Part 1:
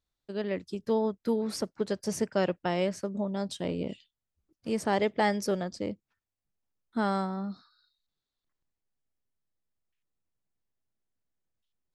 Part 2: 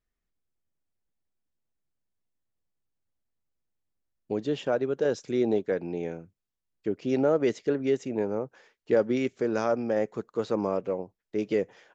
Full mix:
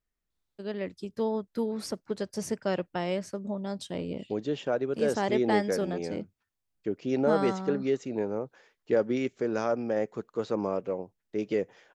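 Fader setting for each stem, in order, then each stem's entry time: -2.0, -2.0 dB; 0.30, 0.00 s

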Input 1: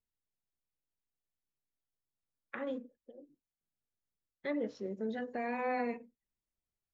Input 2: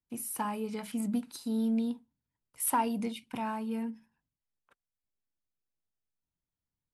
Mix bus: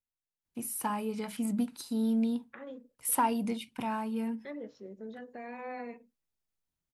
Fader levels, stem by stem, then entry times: -6.5, +1.0 dB; 0.00, 0.45 s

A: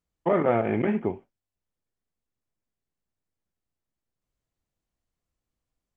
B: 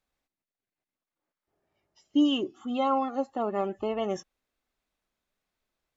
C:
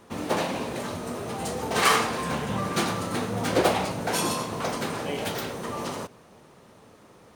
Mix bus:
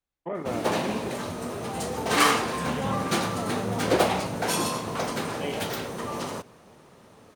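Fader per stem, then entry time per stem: -10.0, -8.5, 0.0 dB; 0.00, 0.00, 0.35 s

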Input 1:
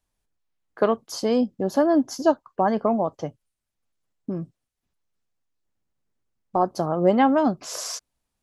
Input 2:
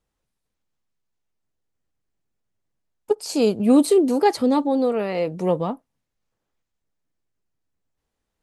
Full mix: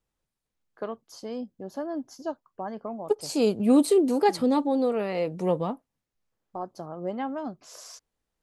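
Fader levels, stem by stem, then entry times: -13.5, -4.0 dB; 0.00, 0.00 s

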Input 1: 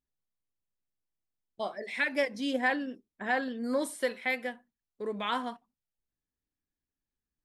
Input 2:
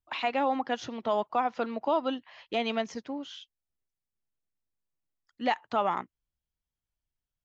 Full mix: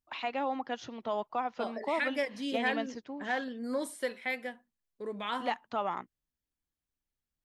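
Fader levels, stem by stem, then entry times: -3.5, -5.5 dB; 0.00, 0.00 s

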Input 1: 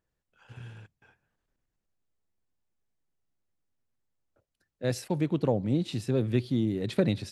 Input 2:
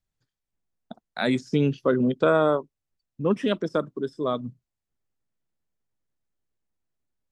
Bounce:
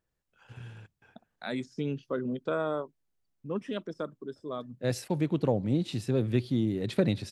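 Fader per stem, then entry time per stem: -0.5, -10.5 dB; 0.00, 0.25 s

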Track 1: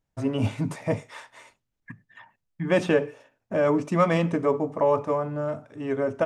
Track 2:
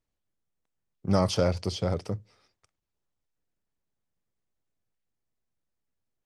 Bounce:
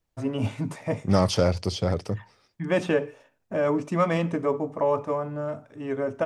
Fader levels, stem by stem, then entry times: -2.0, +3.0 dB; 0.00, 0.00 s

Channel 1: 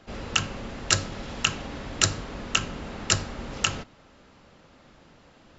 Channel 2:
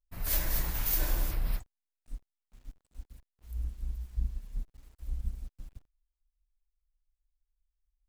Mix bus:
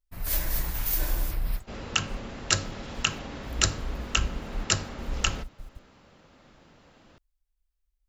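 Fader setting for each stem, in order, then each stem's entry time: -2.0, +2.0 dB; 1.60, 0.00 s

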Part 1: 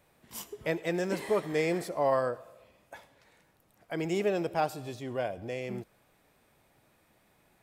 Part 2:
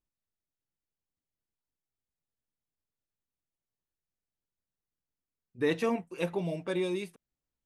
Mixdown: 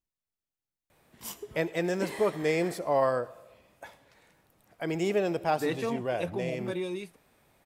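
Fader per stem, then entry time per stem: +1.5, -2.5 dB; 0.90, 0.00 s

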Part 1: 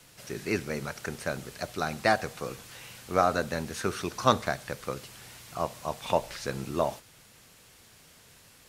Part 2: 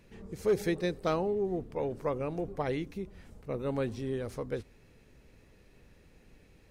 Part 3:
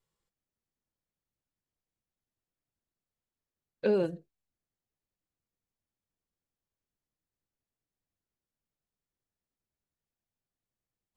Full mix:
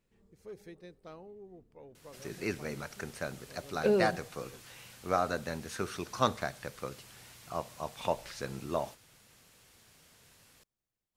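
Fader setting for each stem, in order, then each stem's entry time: -5.5, -19.5, 0.0 dB; 1.95, 0.00, 0.00 s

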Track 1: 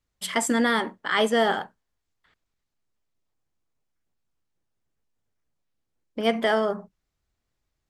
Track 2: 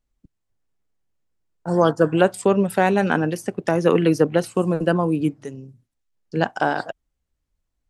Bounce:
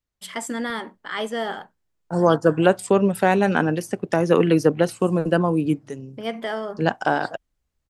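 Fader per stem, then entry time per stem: -5.5, 0.0 dB; 0.00, 0.45 s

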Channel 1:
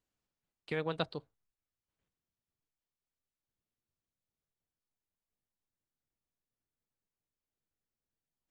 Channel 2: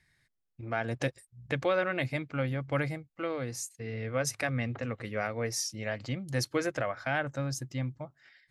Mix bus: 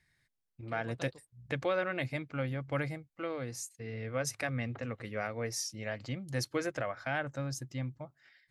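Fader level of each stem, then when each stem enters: -15.0, -3.5 dB; 0.00, 0.00 s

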